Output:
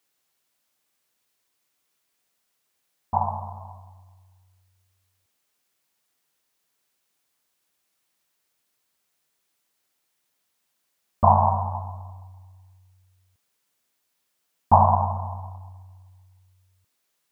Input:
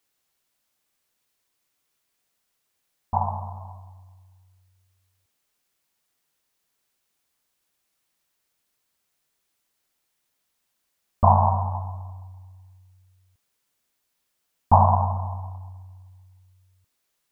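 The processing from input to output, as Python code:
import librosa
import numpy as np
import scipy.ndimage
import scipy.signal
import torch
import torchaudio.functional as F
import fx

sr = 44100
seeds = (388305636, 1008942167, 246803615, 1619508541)

y = fx.highpass(x, sr, hz=110.0, slope=6)
y = y * librosa.db_to_amplitude(1.0)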